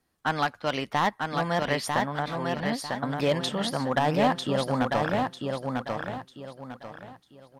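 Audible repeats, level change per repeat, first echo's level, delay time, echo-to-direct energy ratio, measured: 4, −10.0 dB, −4.0 dB, 947 ms, −3.5 dB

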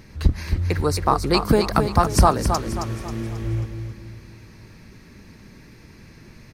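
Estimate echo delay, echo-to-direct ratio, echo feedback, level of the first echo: 269 ms, −6.0 dB, 42%, −7.0 dB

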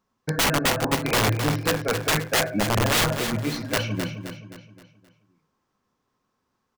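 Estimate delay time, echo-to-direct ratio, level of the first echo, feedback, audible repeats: 262 ms, −7.0 dB, −8.0 dB, 43%, 4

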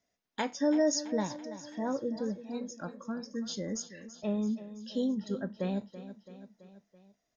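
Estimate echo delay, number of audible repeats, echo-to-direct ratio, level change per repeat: 332 ms, 4, −12.0 dB, −4.5 dB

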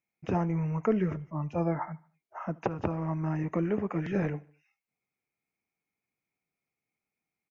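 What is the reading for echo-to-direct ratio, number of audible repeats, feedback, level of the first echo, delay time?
−22.5 dB, 2, 49%, −23.5 dB, 75 ms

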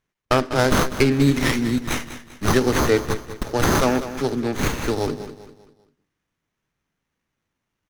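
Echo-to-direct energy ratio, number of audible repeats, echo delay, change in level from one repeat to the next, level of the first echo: −12.0 dB, 3, 197 ms, −8.0 dB, −12.5 dB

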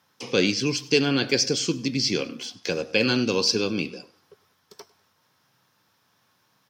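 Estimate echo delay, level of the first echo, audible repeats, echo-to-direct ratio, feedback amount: 100 ms, −21.5 dB, 2, −21.0 dB, 34%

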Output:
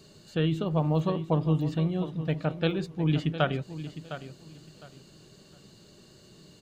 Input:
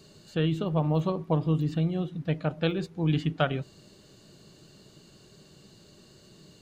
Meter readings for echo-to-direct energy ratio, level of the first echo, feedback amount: −12.5 dB, −12.5 dB, 23%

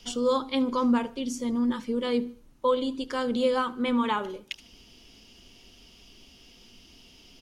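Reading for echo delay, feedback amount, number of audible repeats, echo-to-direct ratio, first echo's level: 75 ms, 47%, 2, −22.5 dB, −23.5 dB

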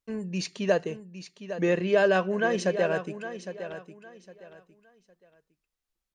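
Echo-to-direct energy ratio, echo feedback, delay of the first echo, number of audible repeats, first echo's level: −11.0 dB, 26%, 809 ms, 3, −11.5 dB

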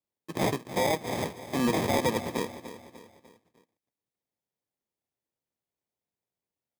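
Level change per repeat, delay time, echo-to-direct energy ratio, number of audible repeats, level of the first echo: −7.0 dB, 298 ms, −12.0 dB, 4, −13.0 dB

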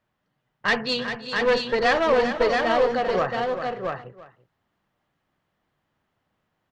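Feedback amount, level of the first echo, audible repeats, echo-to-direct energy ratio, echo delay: repeats not evenly spaced, −17.5 dB, 5, −2.5 dB, 336 ms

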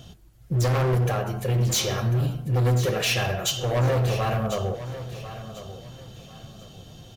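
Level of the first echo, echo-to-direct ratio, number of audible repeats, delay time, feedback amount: −13.0 dB, −12.5 dB, 2, 1,045 ms, 28%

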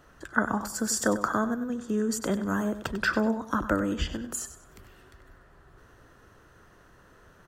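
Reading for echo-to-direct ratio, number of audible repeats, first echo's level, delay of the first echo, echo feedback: −11.5 dB, 3, −12.0 dB, 96 ms, 29%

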